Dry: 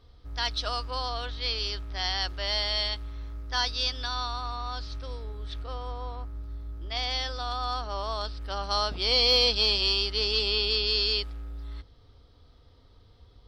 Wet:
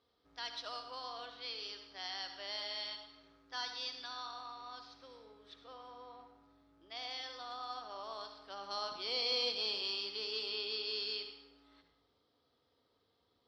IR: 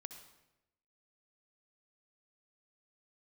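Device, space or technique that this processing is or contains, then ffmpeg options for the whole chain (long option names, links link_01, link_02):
supermarket ceiling speaker: -filter_complex "[0:a]highpass=250,lowpass=6900[link_01];[1:a]atrim=start_sample=2205[link_02];[link_01][link_02]afir=irnorm=-1:irlink=0,volume=-7.5dB"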